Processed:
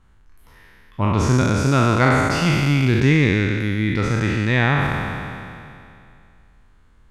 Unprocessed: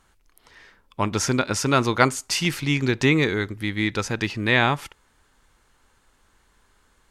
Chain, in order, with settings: spectral trails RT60 2.52 s; tone controls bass +12 dB, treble -9 dB; gain -4 dB

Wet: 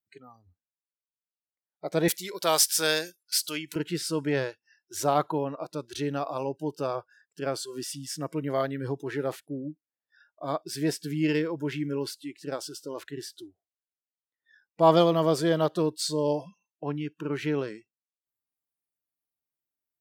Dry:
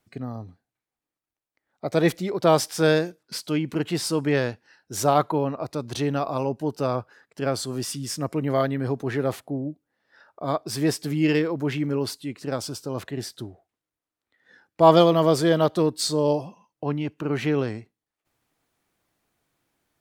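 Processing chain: spectral noise reduction 23 dB; 2.08–3.76 tilt +4.5 dB/oct; gain -4.5 dB

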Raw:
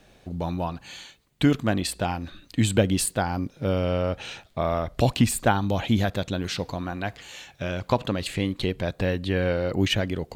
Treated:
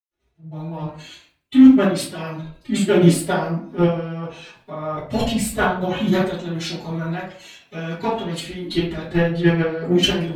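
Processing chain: de-hum 146.8 Hz, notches 7; dynamic EQ 270 Hz, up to +3 dB, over -34 dBFS, Q 1.4; level quantiser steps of 11 dB; formant-preserving pitch shift +10.5 st; AGC gain up to 7 dB; overloaded stage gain 9 dB; reverb RT60 0.60 s, pre-delay 0.11 s; three-band expander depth 40%; gain -1 dB

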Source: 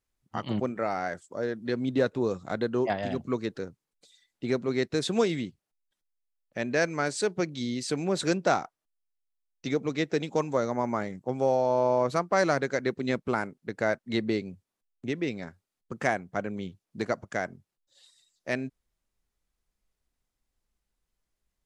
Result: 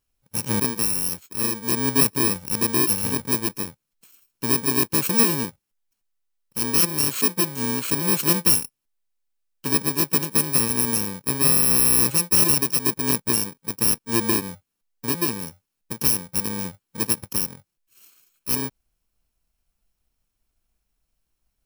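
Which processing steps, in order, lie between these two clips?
FFT order left unsorted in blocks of 64 samples; gain +6.5 dB

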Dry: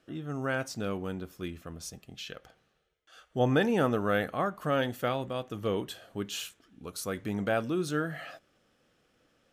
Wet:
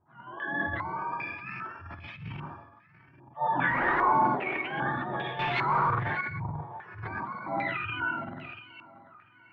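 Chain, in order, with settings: spectrum mirrored in octaves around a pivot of 670 Hz; 3.68–4.13 overdrive pedal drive 33 dB, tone 1000 Hz, clips at -17 dBFS; 7.56–8.02 bell 580 Hz -9 dB 1.6 oct; thinning echo 0.69 s, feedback 47%, high-pass 160 Hz, level -17 dB; non-linear reverb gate 0.19 s flat, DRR -0.5 dB; transient shaper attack -7 dB, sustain +11 dB; 5.39–6.21 sample leveller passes 3; stepped low-pass 2.5 Hz 910–2600 Hz; gain -6.5 dB

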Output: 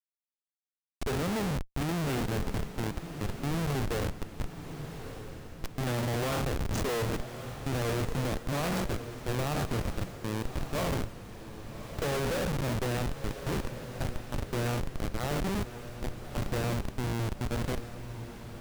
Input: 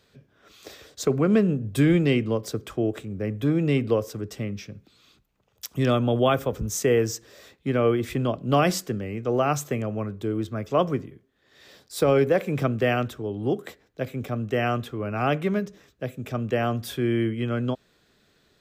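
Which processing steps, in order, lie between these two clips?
spectral trails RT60 0.67 s; Schmitt trigger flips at -21.5 dBFS; diffused feedback echo 1.187 s, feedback 42%, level -10 dB; gain -6 dB

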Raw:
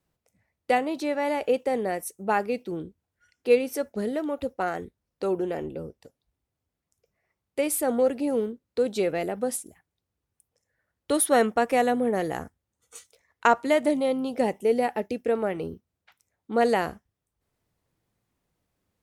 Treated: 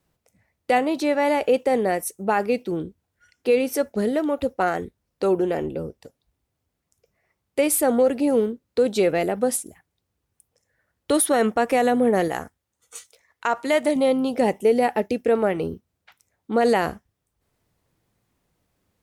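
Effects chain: 12.28–13.96 low shelf 460 Hz -7 dB; limiter -16 dBFS, peak gain reduction 9.5 dB; gain +6 dB

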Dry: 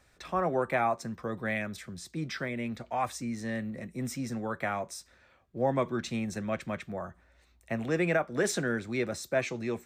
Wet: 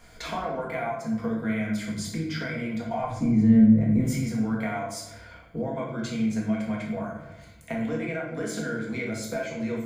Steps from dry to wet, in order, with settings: ripple EQ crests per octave 1.8, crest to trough 10 dB; compressor 10:1, threshold -41 dBFS, peak gain reduction 21.5 dB; 3.01–4.01 tilt -4 dB/oct; shoebox room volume 300 m³, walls mixed, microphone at 1.7 m; gain +7.5 dB

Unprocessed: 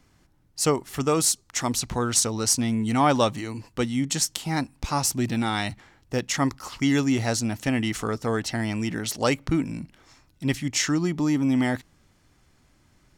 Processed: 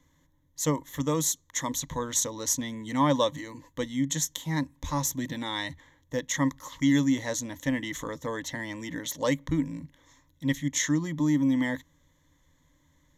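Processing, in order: ripple EQ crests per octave 1.1, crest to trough 15 dB; gain -7.5 dB

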